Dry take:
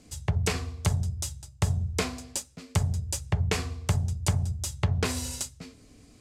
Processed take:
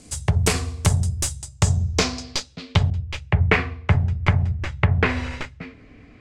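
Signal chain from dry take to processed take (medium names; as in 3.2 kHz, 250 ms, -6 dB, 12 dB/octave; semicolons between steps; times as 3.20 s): tracing distortion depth 0.088 ms; low-pass sweep 9.4 kHz -> 2.1 kHz, 1.36–3.49 s; 2.90–3.95 s: three bands expanded up and down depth 70%; trim +7 dB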